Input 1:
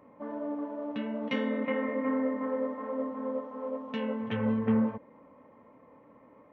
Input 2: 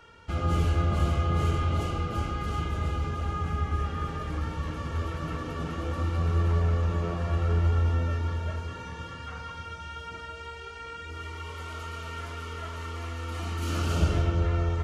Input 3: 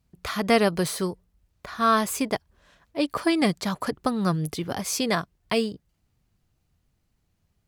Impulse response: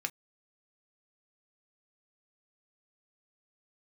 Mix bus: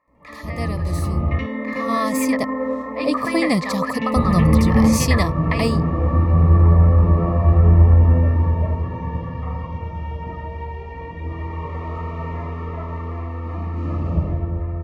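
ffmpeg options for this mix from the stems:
-filter_complex "[0:a]volume=1.33,asplit=2[s0][s1];[s1]volume=0.501[s2];[1:a]lowpass=1200,adelay=150,volume=0.891,asplit=3[s3][s4][s5];[s3]atrim=end=1.39,asetpts=PTS-STARTPTS,afade=t=out:st=1.386:d=0.004:c=hsin[s6];[s4]atrim=start=1.39:end=4.16,asetpts=PTS-STARTPTS,volume=0[s7];[s5]atrim=start=4.16,asetpts=PTS-STARTPTS,afade=t=in:d=0.004:c=hsin[s8];[s6][s7][s8]concat=n=3:v=0:a=1,asplit=2[s9][s10];[s10]volume=0.335[s11];[2:a]aeval=exprs='val(0)+0.00224*(sin(2*PI*60*n/s)+sin(2*PI*2*60*n/s)/2+sin(2*PI*3*60*n/s)/3+sin(2*PI*4*60*n/s)/4+sin(2*PI*5*60*n/s)/5)':c=same,volume=1.41,asplit=2[s12][s13];[s13]volume=0.224[s14];[s0][s12]amix=inputs=2:normalize=0,bandpass=f=1600:t=q:w=3.2:csg=0,acompressor=threshold=0.0224:ratio=6,volume=1[s15];[s2][s11][s14]amix=inputs=3:normalize=0,aecho=0:1:79:1[s16];[s9][s15][s16]amix=inputs=3:normalize=0,equalizer=f=160:t=o:w=0.33:g=4,equalizer=f=400:t=o:w=0.33:g=-7,equalizer=f=800:t=o:w=0.33:g=-4,equalizer=f=3150:t=o:w=0.33:g=-10,dynaudnorm=f=360:g=9:m=5.96,asuperstop=centerf=1500:order=12:qfactor=3.7"

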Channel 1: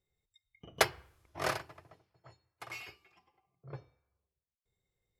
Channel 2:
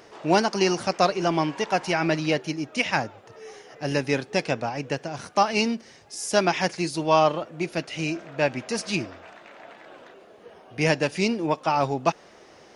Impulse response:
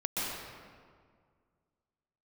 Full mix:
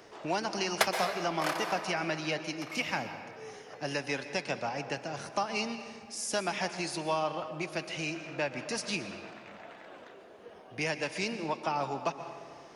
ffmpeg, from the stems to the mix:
-filter_complex "[0:a]highpass=f=510:w=0.5412,highpass=f=510:w=1.3066,volume=0.75,asplit=2[s0][s1];[s1]volume=0.501[s2];[1:a]acrossover=split=140|620[s3][s4][s5];[s3]acompressor=threshold=0.00316:ratio=4[s6];[s4]acompressor=threshold=0.0178:ratio=4[s7];[s5]acompressor=threshold=0.0447:ratio=4[s8];[s6][s7][s8]amix=inputs=3:normalize=0,volume=0.562,asplit=2[s9][s10];[s10]volume=0.188[s11];[2:a]atrim=start_sample=2205[s12];[s2][s11]amix=inputs=2:normalize=0[s13];[s13][s12]afir=irnorm=-1:irlink=0[s14];[s0][s9][s14]amix=inputs=3:normalize=0"

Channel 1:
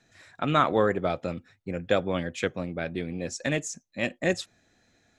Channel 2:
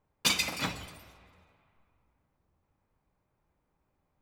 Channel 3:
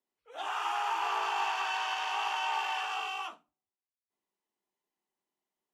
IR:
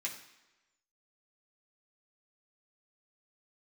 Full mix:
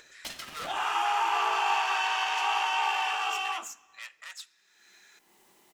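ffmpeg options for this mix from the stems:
-filter_complex "[0:a]aeval=exprs='(tanh(35.5*val(0)+0.6)-tanh(0.6))/35.5':c=same,highpass=f=1200:w=0.5412,highpass=f=1200:w=1.3066,aeval=exprs='0.0668*(cos(1*acos(clip(val(0)/0.0668,-1,1)))-cos(1*PI/2))+0.00211*(cos(2*acos(clip(val(0)/0.0668,-1,1)))-cos(2*PI/2))':c=same,volume=0.631,asplit=2[s0][s1];[s1]volume=0.224[s2];[1:a]acompressor=threshold=0.02:ratio=2,aeval=exprs='val(0)*sgn(sin(2*PI*460*n/s))':c=same,volume=0.422[s3];[2:a]adelay=300,volume=1.41,asplit=2[s4][s5];[s5]volume=0.422[s6];[3:a]atrim=start_sample=2205[s7];[s2][s6]amix=inputs=2:normalize=0[s8];[s8][s7]afir=irnorm=-1:irlink=0[s9];[s0][s3][s4][s9]amix=inputs=4:normalize=0,acompressor=mode=upward:threshold=0.00794:ratio=2.5"

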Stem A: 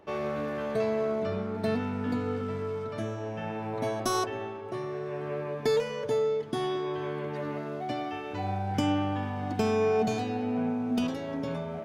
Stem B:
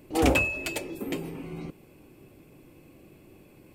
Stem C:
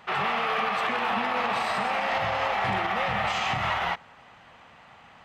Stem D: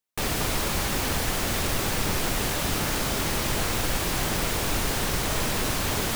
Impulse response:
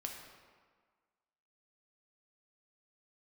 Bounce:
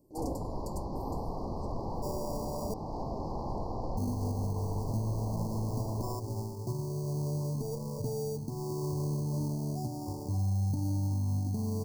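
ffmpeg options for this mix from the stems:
-filter_complex "[0:a]asubboost=boost=10.5:cutoff=150,alimiter=limit=0.15:level=0:latency=1:release=366,acrusher=samples=21:mix=1:aa=0.000001,adelay=1950,volume=0.708,asplit=3[s0][s1][s2];[s0]atrim=end=2.74,asetpts=PTS-STARTPTS,afade=t=out:st=2.736:d=0.004:c=hsin[s3];[s1]atrim=start=2.74:end=3.97,asetpts=PTS-STARTPTS,volume=0[s4];[s2]atrim=start=3.97,asetpts=PTS-STARTPTS,afade=t=in:d=0.004:c=hsin[s5];[s3][s4][s5]concat=n=3:v=0:a=1[s6];[1:a]volume=0.237[s7];[2:a]adelay=850,volume=0.168[s8];[3:a]lowpass=f=3000:w=0.5412,lowpass=f=3000:w=1.3066,volume=0.422[s9];[s6][s7][s8][s9]amix=inputs=4:normalize=0,asuperstop=centerf=2200:order=20:qfactor=0.64,alimiter=limit=0.0631:level=0:latency=1:release=269"

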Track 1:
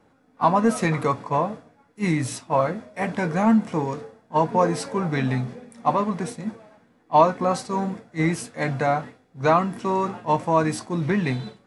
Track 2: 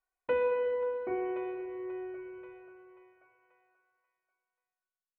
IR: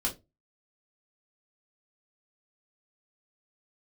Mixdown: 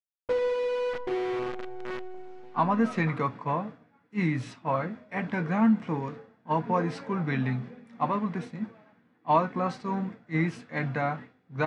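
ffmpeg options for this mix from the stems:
-filter_complex "[0:a]highpass=130,equalizer=f=580:w=0.65:g=-8.5,adelay=2150,volume=0.944[s0];[1:a]equalizer=f=310:w=0.49:g=11.5,acrusher=bits=5:dc=4:mix=0:aa=0.000001,volume=0.422,asplit=2[s1][s2];[s2]volume=0.1[s3];[2:a]atrim=start_sample=2205[s4];[s3][s4]afir=irnorm=-1:irlink=0[s5];[s0][s1][s5]amix=inputs=3:normalize=0,lowpass=2600"

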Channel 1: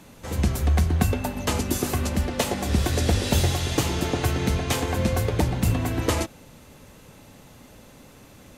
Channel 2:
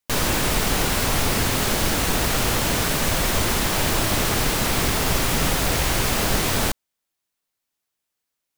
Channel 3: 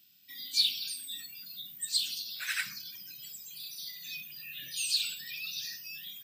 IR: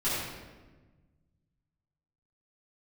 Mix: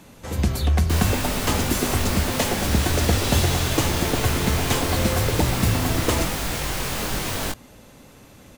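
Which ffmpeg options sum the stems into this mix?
-filter_complex "[0:a]volume=1.12[s0];[1:a]flanger=delay=20:depth=2.7:speed=0.89,adelay=800,volume=0.794[s1];[2:a]asplit=2[s2][s3];[s3]afreqshift=-1.6[s4];[s2][s4]amix=inputs=2:normalize=1,volume=0.473[s5];[s0][s1][s5]amix=inputs=3:normalize=0"

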